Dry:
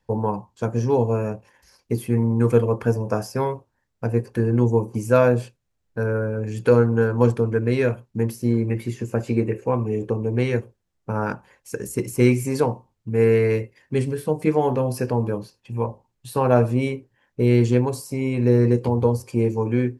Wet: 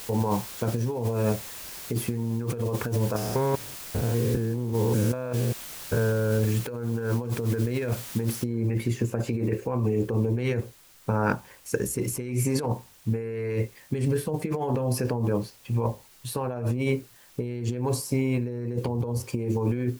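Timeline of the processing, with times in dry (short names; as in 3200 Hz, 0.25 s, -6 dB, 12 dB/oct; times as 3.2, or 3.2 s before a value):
3.16–6.38 stepped spectrum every 0.2 s
8.44 noise floor step -43 dB -58 dB
whole clip: low shelf 63 Hz +5.5 dB; negative-ratio compressor -25 dBFS, ratio -1; gain -1.5 dB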